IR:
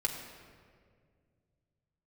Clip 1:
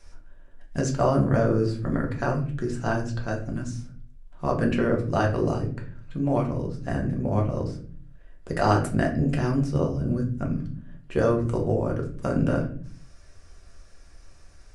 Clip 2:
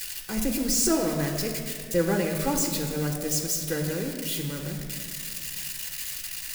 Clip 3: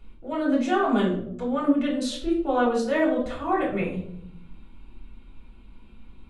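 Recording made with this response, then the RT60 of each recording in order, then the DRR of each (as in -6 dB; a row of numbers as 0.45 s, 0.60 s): 2; 0.45 s, 2.0 s, 0.70 s; 0.0 dB, 1.5 dB, -3.5 dB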